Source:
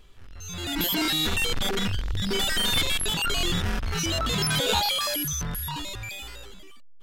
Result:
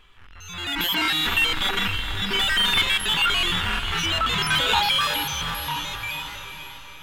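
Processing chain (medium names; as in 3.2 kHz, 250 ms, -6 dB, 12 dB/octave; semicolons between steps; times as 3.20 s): high-order bell 1.7 kHz +11 dB 2.3 oct; on a send: echo that smears into a reverb 454 ms, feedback 52%, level -9 dB; on the sum: trim -4 dB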